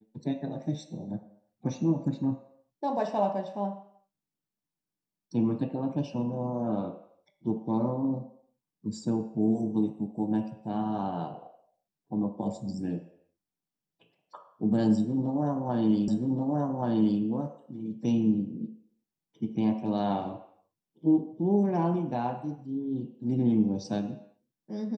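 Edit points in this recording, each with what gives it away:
16.08 repeat of the last 1.13 s

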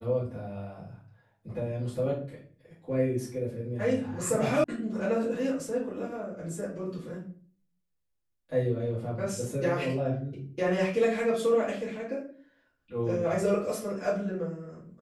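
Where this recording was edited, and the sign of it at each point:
4.64 sound cut off

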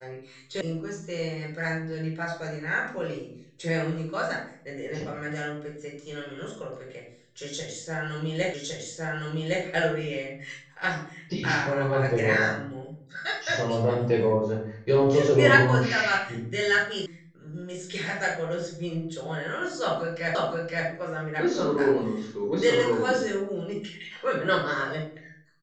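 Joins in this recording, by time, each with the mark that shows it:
0.61 sound cut off
8.54 repeat of the last 1.11 s
17.06 sound cut off
20.35 repeat of the last 0.52 s

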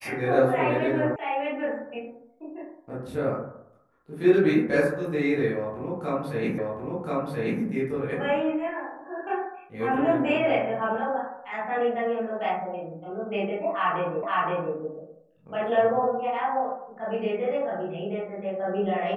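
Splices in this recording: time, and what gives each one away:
1.16 sound cut off
6.58 repeat of the last 1.03 s
14.23 repeat of the last 0.52 s

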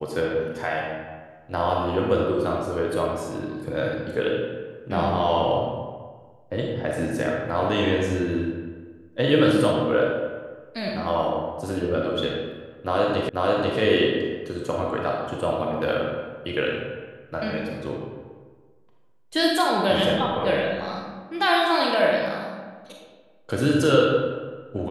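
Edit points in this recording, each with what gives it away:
13.29 repeat of the last 0.49 s

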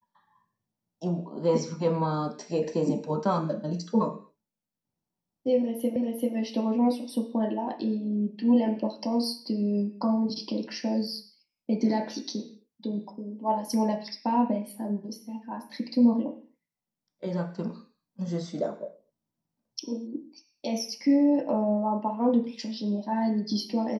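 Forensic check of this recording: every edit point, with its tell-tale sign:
5.96 repeat of the last 0.39 s

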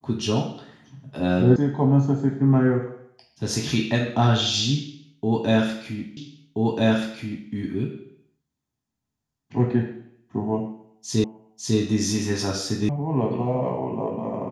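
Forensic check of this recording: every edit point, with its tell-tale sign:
1.56 sound cut off
6.17 repeat of the last 1.33 s
11.24 repeat of the last 0.55 s
12.89 sound cut off

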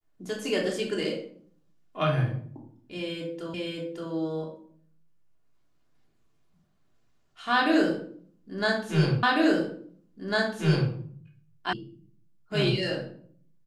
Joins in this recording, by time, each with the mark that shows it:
3.54 repeat of the last 0.57 s
9.23 repeat of the last 1.7 s
11.73 sound cut off

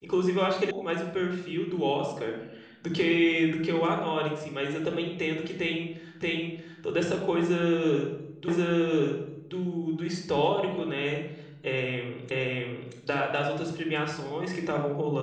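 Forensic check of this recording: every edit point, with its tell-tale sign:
0.71 sound cut off
6.22 repeat of the last 0.63 s
8.48 repeat of the last 1.08 s
12.31 repeat of the last 0.63 s

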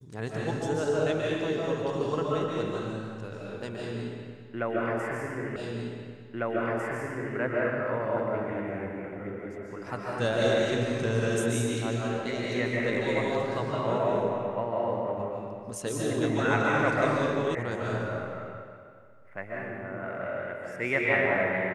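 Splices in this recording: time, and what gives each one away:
5.56 repeat of the last 1.8 s
17.55 sound cut off

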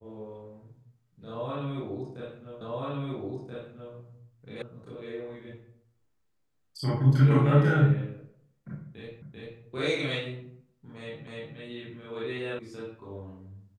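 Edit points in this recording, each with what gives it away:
2.61 repeat of the last 1.33 s
4.62 sound cut off
9.22 repeat of the last 0.39 s
11.27 repeat of the last 0.3 s
12.59 sound cut off

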